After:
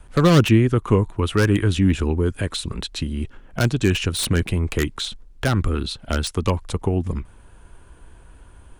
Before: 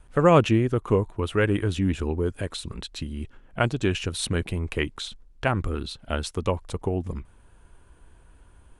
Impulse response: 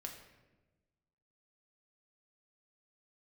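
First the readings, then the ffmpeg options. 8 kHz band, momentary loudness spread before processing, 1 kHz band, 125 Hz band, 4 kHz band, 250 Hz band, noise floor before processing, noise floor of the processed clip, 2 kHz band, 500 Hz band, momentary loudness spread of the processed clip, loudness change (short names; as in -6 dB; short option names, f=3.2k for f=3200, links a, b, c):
+7.0 dB, 14 LU, 0.0 dB, +7.0 dB, +6.5 dB, +6.0 dB, -55 dBFS, -48 dBFS, +3.5 dB, +1.0 dB, 12 LU, +4.5 dB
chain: -filter_complex "[0:a]acrossover=split=400|820[a][b][c];[b]acompressor=threshold=-43dB:ratio=6[d];[c]aeval=exprs='0.0596*(abs(mod(val(0)/0.0596+3,4)-2)-1)':c=same[e];[a][d][e]amix=inputs=3:normalize=0,volume=7dB"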